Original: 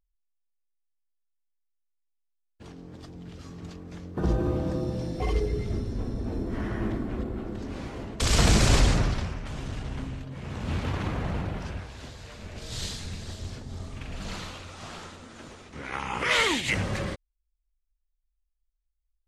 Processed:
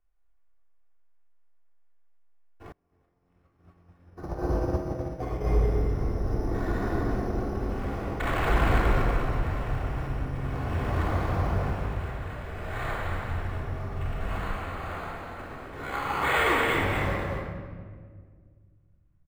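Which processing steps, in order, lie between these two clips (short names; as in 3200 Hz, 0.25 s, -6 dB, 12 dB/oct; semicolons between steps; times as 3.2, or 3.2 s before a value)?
low shelf 130 Hz +8 dB; careless resampling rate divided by 8×, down none, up hold; soft clip -21.5 dBFS, distortion -6 dB; three-band isolator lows -13 dB, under 440 Hz, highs -16 dB, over 2100 Hz; echo 0.237 s -6 dB; shoebox room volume 2500 m³, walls mixed, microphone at 3.4 m; 2.72–5.47 upward expander 2.5:1, over -46 dBFS; gain +2.5 dB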